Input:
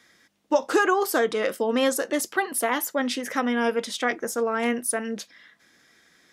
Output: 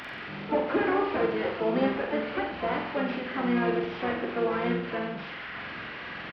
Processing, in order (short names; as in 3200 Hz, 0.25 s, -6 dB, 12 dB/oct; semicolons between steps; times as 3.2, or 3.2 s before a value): delta modulation 16 kbps, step -29.5 dBFS; HPF 54 Hz 12 dB/oct; harmoniser -5 st -5 dB, +7 st -10 dB; on a send: flutter echo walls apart 7.8 m, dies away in 0.68 s; on the sum: gain -6 dB